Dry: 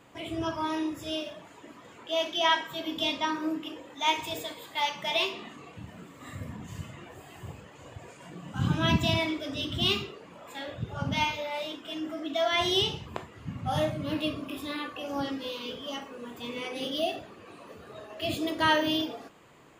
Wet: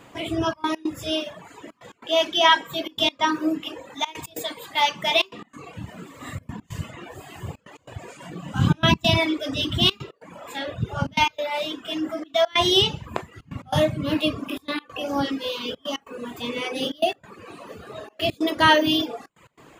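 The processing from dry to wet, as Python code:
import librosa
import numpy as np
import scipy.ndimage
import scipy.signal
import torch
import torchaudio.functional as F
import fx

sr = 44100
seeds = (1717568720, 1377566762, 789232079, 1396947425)

y = fx.dereverb_blind(x, sr, rt60_s=0.64)
y = fx.step_gate(y, sr, bpm=141, pattern='xxxxx.x.xxx', floor_db=-24.0, edge_ms=4.5)
y = y * 10.0 ** (8.5 / 20.0)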